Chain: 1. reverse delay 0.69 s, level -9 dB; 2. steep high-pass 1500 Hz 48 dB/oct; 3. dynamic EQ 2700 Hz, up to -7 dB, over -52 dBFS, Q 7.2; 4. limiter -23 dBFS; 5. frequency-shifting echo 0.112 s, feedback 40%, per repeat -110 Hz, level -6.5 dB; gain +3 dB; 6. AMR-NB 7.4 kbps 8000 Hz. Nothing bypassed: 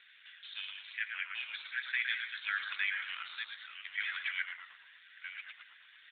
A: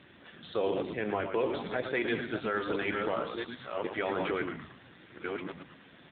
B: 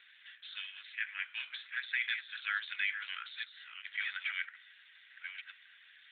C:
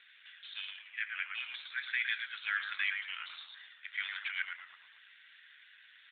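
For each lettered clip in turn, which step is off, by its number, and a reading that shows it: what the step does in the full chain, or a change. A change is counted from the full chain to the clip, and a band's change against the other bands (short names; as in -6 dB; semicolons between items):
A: 2, crest factor change -4.5 dB; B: 5, momentary loudness spread change +2 LU; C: 1, crest factor change +1.5 dB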